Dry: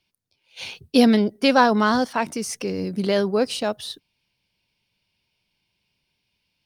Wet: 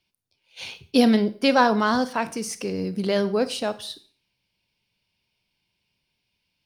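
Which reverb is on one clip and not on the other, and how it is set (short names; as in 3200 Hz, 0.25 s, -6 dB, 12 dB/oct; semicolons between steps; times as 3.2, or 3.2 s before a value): Schroeder reverb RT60 0.43 s, combs from 32 ms, DRR 13.5 dB; gain -2 dB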